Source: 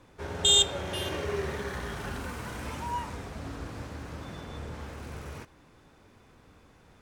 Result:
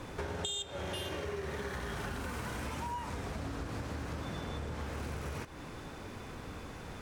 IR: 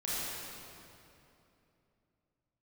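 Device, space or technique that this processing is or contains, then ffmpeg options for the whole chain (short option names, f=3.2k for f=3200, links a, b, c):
serial compression, leveller first: -af "acompressor=threshold=-39dB:ratio=2,acompressor=threshold=-49dB:ratio=6,volume=12.5dB"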